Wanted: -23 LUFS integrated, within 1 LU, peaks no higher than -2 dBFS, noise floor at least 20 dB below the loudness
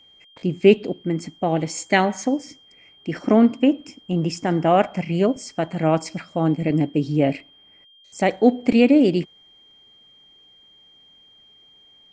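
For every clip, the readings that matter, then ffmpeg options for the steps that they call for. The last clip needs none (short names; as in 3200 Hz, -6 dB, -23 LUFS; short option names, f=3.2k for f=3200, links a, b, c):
steady tone 3200 Hz; tone level -50 dBFS; loudness -20.5 LUFS; peak -1.0 dBFS; loudness target -23.0 LUFS
-> -af "bandreject=f=3.2k:w=30"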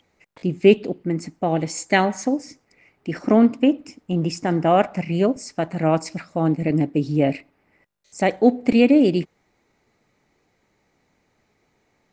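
steady tone none; loudness -20.5 LUFS; peak -1.0 dBFS; loudness target -23.0 LUFS
-> -af "volume=-2.5dB"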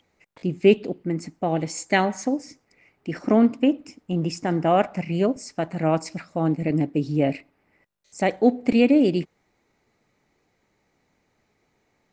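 loudness -23.0 LUFS; peak -3.5 dBFS; noise floor -70 dBFS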